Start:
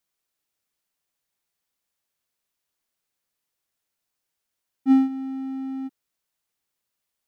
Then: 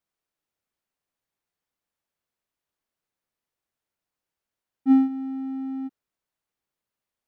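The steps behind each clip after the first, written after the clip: high shelf 2600 Hz -10 dB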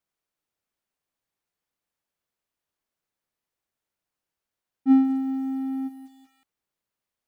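lo-fi delay 0.188 s, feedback 35%, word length 8-bit, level -14.5 dB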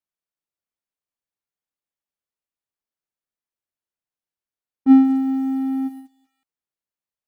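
gate -41 dBFS, range -15 dB; gain +6 dB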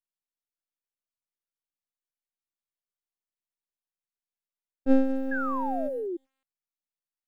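half-wave rectifier; painted sound fall, 5.31–6.17, 330–1700 Hz -26 dBFS; gain -5.5 dB

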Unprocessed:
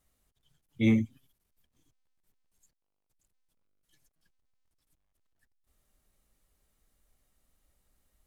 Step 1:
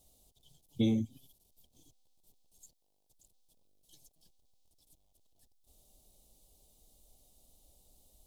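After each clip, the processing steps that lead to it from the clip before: EQ curve 190 Hz 0 dB, 770 Hz +4 dB, 1600 Hz -24 dB, 3500 Hz +5 dB; compressor 6:1, threshold -33 dBFS, peak gain reduction 13 dB; gain +6 dB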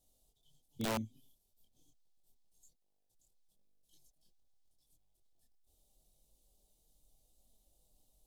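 chorus voices 6, 0.26 Hz, delay 24 ms, depth 4.6 ms; wrapped overs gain 24.5 dB; gain -5.5 dB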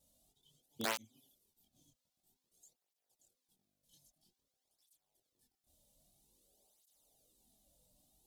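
tape flanging out of phase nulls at 0.51 Hz, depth 2.8 ms; gain +5.5 dB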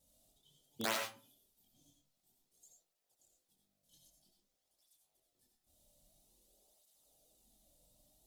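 reverb RT60 0.35 s, pre-delay 45 ms, DRR 2 dB

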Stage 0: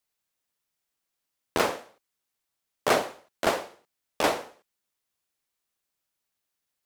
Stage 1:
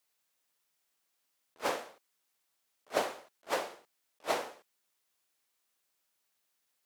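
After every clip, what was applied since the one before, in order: low shelf 180 Hz -11.5 dB; in parallel at +1.5 dB: compressor, threshold -31 dBFS, peak gain reduction 13 dB; on the sum: attack slew limiter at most 450 dB/s; gain -3 dB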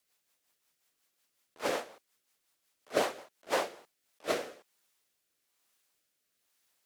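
rotary speaker horn 5.5 Hz, later 1.1 Hz, at 3.46; gain +5.5 dB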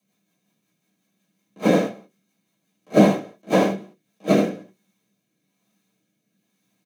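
in parallel at -8 dB: bit-crush 6-bit; on the sum: echo 76 ms -6 dB; reverb RT60 0.15 s, pre-delay 3 ms, DRR -2.5 dB; gain -3 dB

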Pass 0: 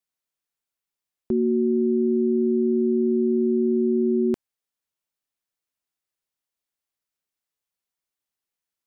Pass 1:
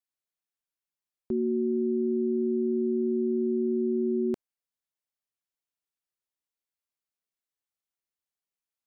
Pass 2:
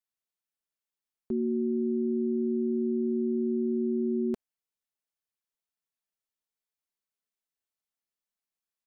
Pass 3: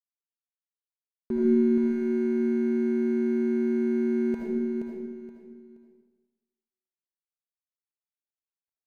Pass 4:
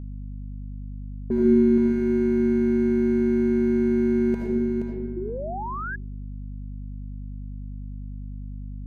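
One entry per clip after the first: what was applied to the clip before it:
dynamic EQ 560 Hz, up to +3 dB, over -33 dBFS, Q 0.99; gain -7 dB
comb 4.6 ms, depth 37%; gain -2.5 dB
median filter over 41 samples; feedback echo 0.474 s, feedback 27%, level -6 dB; digital reverb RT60 1.2 s, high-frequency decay 0.85×, pre-delay 35 ms, DRR -3 dB; gain +2 dB
low-pass opened by the level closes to 530 Hz, open at -26 dBFS; hum 50 Hz, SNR 10 dB; painted sound rise, 5.16–5.96, 340–1700 Hz -36 dBFS; gain +4 dB

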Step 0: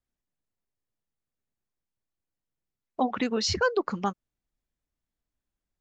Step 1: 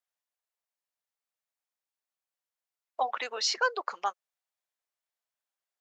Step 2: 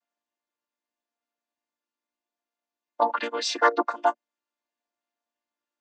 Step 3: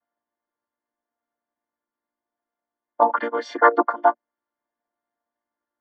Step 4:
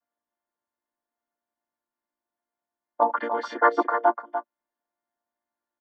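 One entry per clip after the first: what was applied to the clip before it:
HPF 590 Hz 24 dB/oct
chord vocoder major triad, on A#3; gain +7.5 dB
polynomial smoothing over 41 samples; gain +5.5 dB
echo 0.295 s -8.5 dB; gain -4 dB

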